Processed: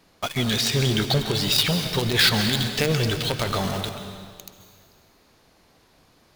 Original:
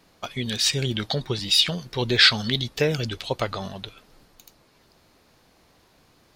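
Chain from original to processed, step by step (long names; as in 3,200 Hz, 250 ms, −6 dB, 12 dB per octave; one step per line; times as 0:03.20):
in parallel at −3.5 dB: log-companded quantiser 2 bits
on the sum: brickwall limiter −8.5 dBFS, peak gain reduction 12 dB
dense smooth reverb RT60 1.9 s, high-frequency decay 0.9×, pre-delay 120 ms, DRR 7 dB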